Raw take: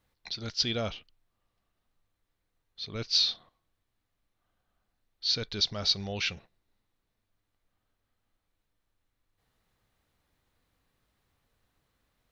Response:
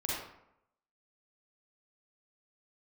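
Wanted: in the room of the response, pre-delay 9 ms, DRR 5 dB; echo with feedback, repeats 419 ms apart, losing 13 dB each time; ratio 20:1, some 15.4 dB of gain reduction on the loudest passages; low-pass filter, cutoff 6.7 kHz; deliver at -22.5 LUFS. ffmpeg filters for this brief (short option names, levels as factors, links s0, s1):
-filter_complex "[0:a]lowpass=6700,acompressor=threshold=0.0141:ratio=20,aecho=1:1:419|838|1257:0.224|0.0493|0.0108,asplit=2[s0][s1];[1:a]atrim=start_sample=2205,adelay=9[s2];[s1][s2]afir=irnorm=-1:irlink=0,volume=0.335[s3];[s0][s3]amix=inputs=2:normalize=0,volume=8.41"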